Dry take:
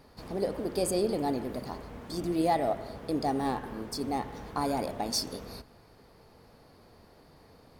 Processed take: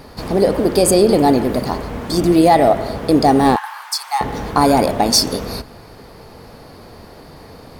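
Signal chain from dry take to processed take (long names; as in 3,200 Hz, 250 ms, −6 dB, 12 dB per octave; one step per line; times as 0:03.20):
0:03.56–0:04.21: Chebyshev high-pass filter 840 Hz, order 5
boost into a limiter +18.5 dB
level −1 dB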